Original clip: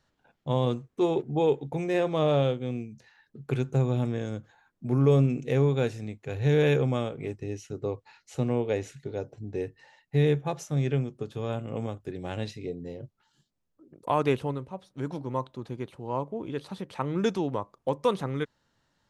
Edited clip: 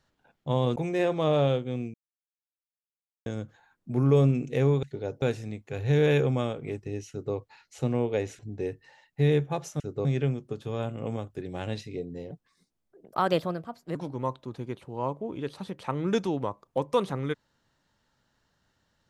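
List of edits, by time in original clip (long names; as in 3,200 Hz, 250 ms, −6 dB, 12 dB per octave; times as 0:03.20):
0:00.76–0:01.71: remove
0:02.89–0:04.21: silence
0:07.66–0:07.91: duplicate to 0:10.75
0:08.95–0:09.34: move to 0:05.78
0:13.01–0:15.06: play speed 125%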